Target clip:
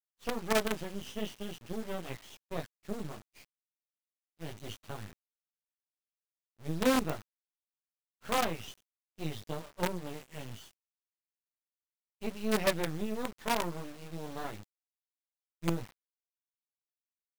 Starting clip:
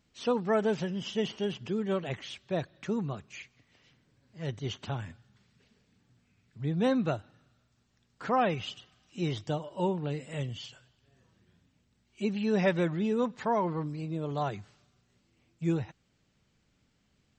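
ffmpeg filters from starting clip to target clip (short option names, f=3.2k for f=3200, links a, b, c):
-af "flanger=delay=17:depth=2.4:speed=0.5,acrusher=bits=5:dc=4:mix=0:aa=0.000001,agate=range=-33dB:threshold=-42dB:ratio=3:detection=peak"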